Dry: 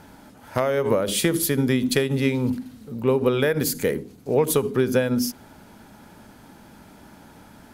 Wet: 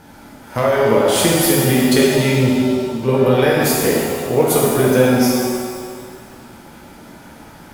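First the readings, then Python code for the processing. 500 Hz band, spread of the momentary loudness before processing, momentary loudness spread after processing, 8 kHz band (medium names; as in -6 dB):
+7.5 dB, 6 LU, 9 LU, +8.5 dB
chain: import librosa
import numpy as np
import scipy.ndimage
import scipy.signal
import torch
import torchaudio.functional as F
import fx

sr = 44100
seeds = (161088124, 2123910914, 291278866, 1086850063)

y = fx.rev_shimmer(x, sr, seeds[0], rt60_s=1.8, semitones=7, shimmer_db=-8, drr_db=-4.5)
y = y * 10.0 ** (2.0 / 20.0)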